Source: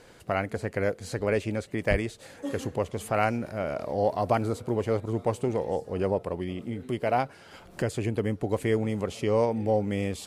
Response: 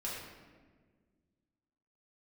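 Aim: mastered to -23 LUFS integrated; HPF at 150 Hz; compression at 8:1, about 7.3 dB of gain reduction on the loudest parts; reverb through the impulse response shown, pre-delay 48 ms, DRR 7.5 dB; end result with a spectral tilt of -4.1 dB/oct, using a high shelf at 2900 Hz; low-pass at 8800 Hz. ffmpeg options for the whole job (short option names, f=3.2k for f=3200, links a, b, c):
-filter_complex "[0:a]highpass=150,lowpass=8.8k,highshelf=f=2.9k:g=-3.5,acompressor=threshold=-27dB:ratio=8,asplit=2[a][b];[1:a]atrim=start_sample=2205,adelay=48[c];[b][c]afir=irnorm=-1:irlink=0,volume=-9.5dB[d];[a][d]amix=inputs=2:normalize=0,volume=10.5dB"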